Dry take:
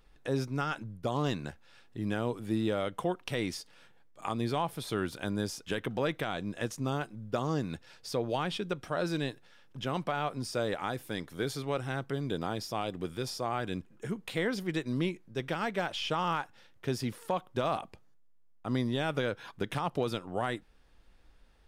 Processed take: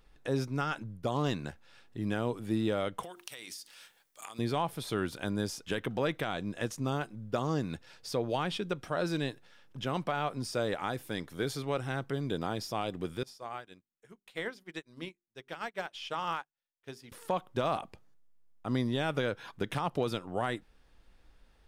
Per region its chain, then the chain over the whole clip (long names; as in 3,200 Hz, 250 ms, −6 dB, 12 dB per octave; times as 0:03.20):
0:03.03–0:04.39: spectral tilt +4.5 dB per octave + mains-hum notches 50/100/150/200/250/300/350/400 Hz + downward compressor 16 to 1, threshold −40 dBFS
0:13.23–0:17.12: low-shelf EQ 400 Hz −9.5 dB + mains-hum notches 50/100/150/200/250/300/350/400 Hz + expander for the loud parts 2.5 to 1, over −55 dBFS
whole clip: no processing